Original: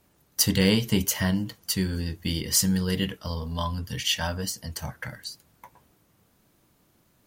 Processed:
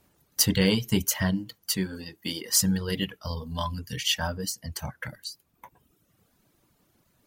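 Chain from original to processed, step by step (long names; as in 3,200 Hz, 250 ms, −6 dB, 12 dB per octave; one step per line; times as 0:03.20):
reverb reduction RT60 0.96 s
0:01.76–0:02.55: high-pass filter 150 Hz → 330 Hz 12 dB per octave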